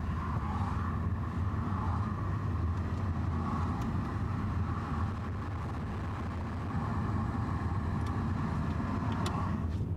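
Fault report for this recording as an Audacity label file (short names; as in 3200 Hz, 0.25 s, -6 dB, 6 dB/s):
5.090000	6.720000	clipped -33.5 dBFS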